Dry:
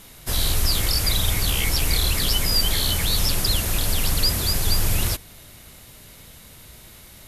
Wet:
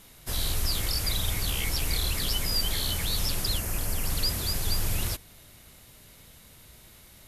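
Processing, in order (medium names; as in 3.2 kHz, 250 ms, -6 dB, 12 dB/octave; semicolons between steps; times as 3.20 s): 3.58–4.10 s: peaking EQ 3.7 kHz -11.5 dB 0.49 oct; trim -7 dB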